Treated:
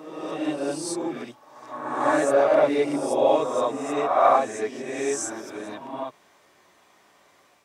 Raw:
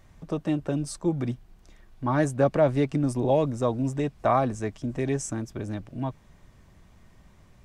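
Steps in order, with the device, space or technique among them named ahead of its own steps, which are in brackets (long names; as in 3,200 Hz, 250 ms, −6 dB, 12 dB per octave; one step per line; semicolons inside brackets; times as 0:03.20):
ghost voice (reversed playback; convolution reverb RT60 1.2 s, pre-delay 3 ms, DRR −5.5 dB; reversed playback; high-pass filter 480 Hz 12 dB per octave)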